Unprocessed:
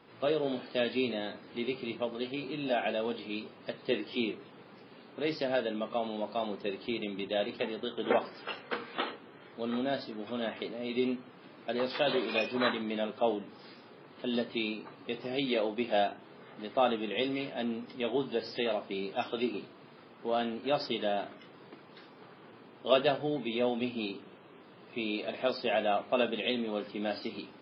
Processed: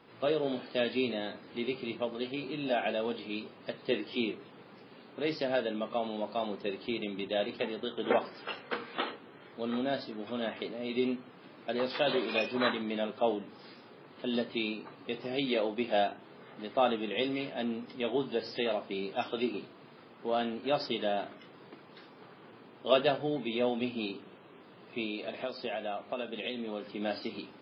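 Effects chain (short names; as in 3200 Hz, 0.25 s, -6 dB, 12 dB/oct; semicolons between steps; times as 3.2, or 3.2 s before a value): 25.04–27.01 compressor 6:1, threshold -33 dBFS, peak gain reduction 10 dB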